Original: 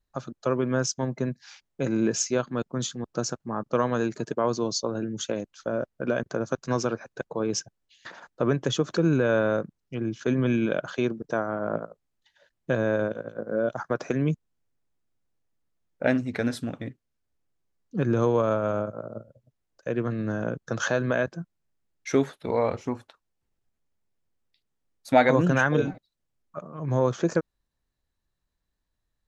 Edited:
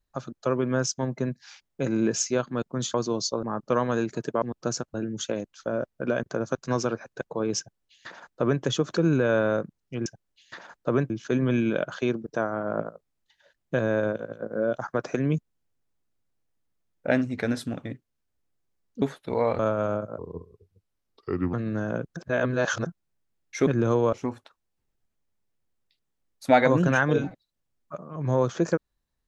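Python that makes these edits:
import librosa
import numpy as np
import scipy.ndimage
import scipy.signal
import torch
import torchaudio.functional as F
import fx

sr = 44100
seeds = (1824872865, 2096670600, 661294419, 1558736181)

y = fx.edit(x, sr, fx.swap(start_s=2.94, length_s=0.52, other_s=4.45, other_length_s=0.49),
    fx.duplicate(start_s=7.59, length_s=1.04, to_s=10.06),
    fx.swap(start_s=17.98, length_s=0.46, other_s=22.19, other_length_s=0.57),
    fx.speed_span(start_s=19.03, length_s=1.03, speed=0.76),
    fx.reverse_span(start_s=20.69, length_s=0.7), tone=tone)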